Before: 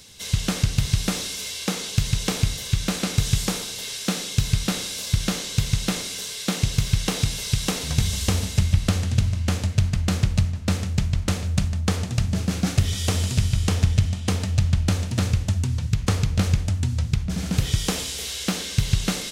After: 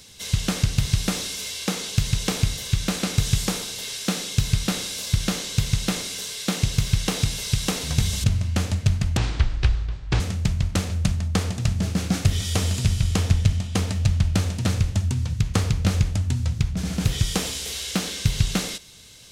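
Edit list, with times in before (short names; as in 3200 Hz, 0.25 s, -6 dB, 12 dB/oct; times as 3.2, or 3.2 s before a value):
8.24–9.16 cut
10.09–10.73 speed 62%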